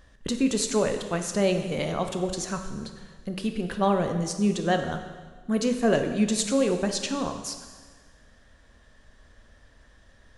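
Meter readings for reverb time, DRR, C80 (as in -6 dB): 1.5 s, 6.0 dB, 9.5 dB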